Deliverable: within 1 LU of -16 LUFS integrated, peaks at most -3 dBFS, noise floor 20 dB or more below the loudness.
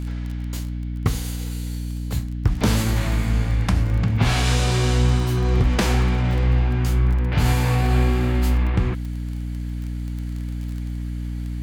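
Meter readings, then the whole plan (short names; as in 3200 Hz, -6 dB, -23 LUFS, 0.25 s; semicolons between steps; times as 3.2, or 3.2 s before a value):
ticks 19/s; hum 60 Hz; harmonics up to 300 Hz; hum level -24 dBFS; loudness -22.5 LUFS; peak -7.0 dBFS; loudness target -16.0 LUFS
-> de-click; de-hum 60 Hz, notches 5; gain +6.5 dB; limiter -3 dBFS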